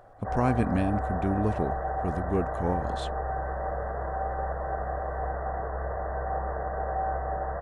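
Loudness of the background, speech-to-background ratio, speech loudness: -32.0 LUFS, 2.0 dB, -30.0 LUFS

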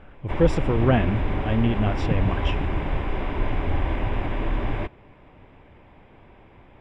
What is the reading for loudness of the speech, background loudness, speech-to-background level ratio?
-24.5 LUFS, -28.0 LUFS, 3.5 dB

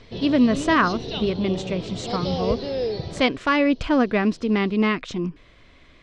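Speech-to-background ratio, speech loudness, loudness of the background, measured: 7.0 dB, -22.5 LUFS, -29.5 LUFS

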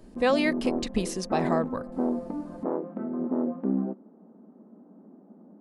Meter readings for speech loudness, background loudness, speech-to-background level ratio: -28.5 LUFS, -31.0 LUFS, 2.5 dB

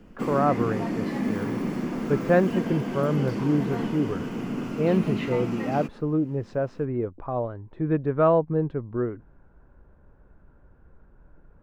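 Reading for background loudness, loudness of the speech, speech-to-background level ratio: -29.5 LUFS, -26.5 LUFS, 3.0 dB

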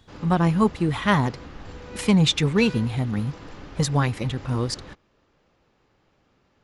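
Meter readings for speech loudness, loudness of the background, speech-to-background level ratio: -23.0 LUFS, -41.5 LUFS, 18.5 dB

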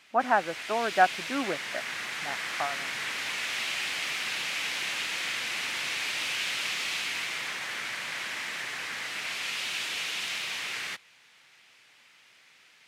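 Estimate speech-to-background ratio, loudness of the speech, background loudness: 2.5 dB, -28.5 LUFS, -31.0 LUFS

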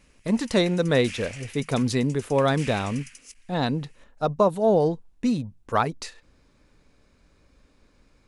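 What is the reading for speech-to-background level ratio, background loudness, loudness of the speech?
17.5 dB, -42.0 LUFS, -24.5 LUFS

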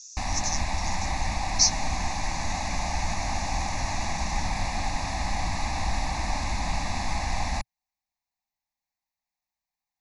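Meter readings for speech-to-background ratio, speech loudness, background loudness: 3.0 dB, -27.0 LUFS, -30.0 LUFS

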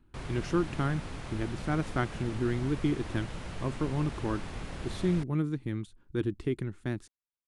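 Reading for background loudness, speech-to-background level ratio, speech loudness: -41.5 LUFS, 8.0 dB, -33.5 LUFS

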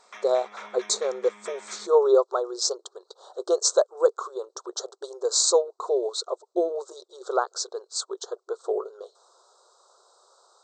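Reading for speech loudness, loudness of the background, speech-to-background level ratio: -26.0 LUFS, -45.0 LUFS, 19.0 dB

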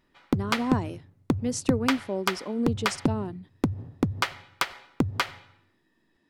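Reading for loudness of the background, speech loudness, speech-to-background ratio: -30.0 LUFS, -31.0 LUFS, -1.0 dB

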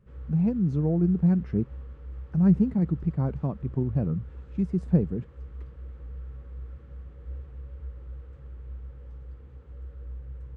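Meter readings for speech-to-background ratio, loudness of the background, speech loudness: 16.5 dB, -43.0 LUFS, -26.5 LUFS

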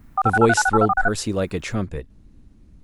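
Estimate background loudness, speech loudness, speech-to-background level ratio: -20.5 LUFS, -23.0 LUFS, -2.5 dB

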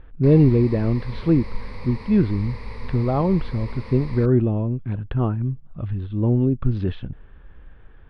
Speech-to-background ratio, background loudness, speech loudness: 16.0 dB, -37.5 LUFS, -21.5 LUFS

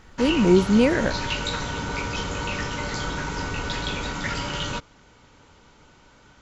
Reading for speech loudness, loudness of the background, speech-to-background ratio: -20.0 LUFS, -28.5 LUFS, 8.5 dB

